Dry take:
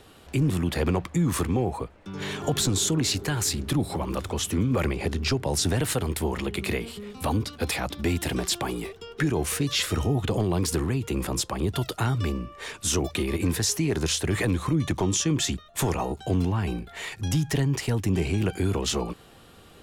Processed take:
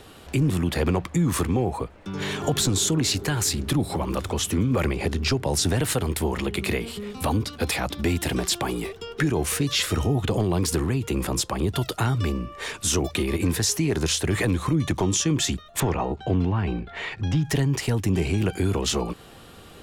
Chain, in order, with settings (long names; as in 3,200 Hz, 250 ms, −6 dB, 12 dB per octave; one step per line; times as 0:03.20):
0:15.80–0:17.45: low-pass filter 3,200 Hz 12 dB per octave
in parallel at −2 dB: downward compressor, threshold −33 dBFS, peak gain reduction 13 dB